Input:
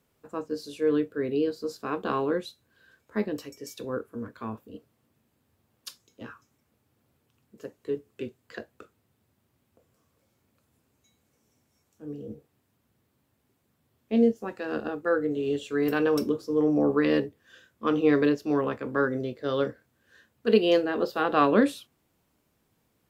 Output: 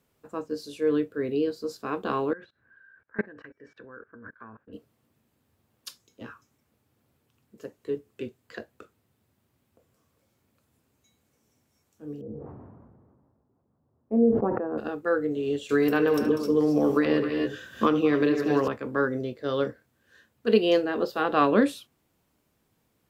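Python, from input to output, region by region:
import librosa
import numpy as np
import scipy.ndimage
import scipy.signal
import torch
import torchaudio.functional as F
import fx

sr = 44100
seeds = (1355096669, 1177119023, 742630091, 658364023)

y = fx.chain(x, sr, fx.level_steps(step_db=24),
    fx.lowpass_res(hz=1600.0, q=8.2), at=(2.33, 4.73))
y = fx.chain(y, sr, fx.lowpass(hz=1100.0, slope=24),
    fx.sustainer(db_per_s=31.0), at=(12.21, 14.78))
y = fx.chain(y, sr, fx.echo_multitap(ms=(72, 193, 258, 274), db=(-15.0, -13.5, -12.5, -13.0)),
    fx.band_squash(depth_pct=100), at=(15.69, 18.68))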